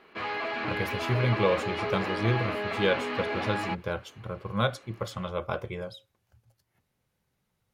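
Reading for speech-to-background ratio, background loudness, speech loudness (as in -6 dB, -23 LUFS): 1.0 dB, -32.0 LUFS, -31.0 LUFS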